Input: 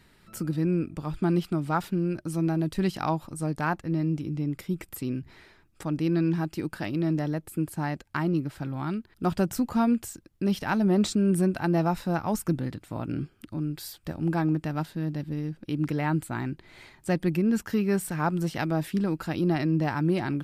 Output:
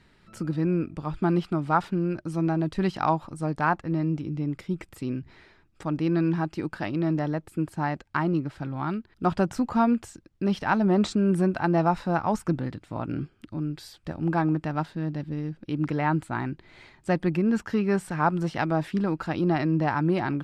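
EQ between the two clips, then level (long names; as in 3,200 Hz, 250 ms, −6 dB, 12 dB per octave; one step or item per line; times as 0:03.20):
high-frequency loss of the air 69 metres
dynamic equaliser 1,000 Hz, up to +6 dB, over −41 dBFS, Q 0.79
0.0 dB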